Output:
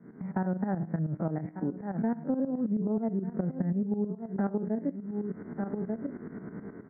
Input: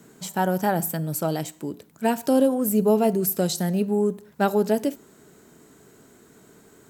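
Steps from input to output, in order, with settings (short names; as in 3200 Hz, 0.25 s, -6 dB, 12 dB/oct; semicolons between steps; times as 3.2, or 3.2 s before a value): stepped spectrum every 50 ms; AGC gain up to 10 dB; on a send: echo 1.192 s -17.5 dB; on the sum: tremolo saw up 9.4 Hz, depth 80%; steep low-pass 2100 Hz 96 dB/oct; bell 200 Hz +11 dB 1.4 oct; compressor 6:1, threshold -29 dBFS, peak gain reduction 23 dB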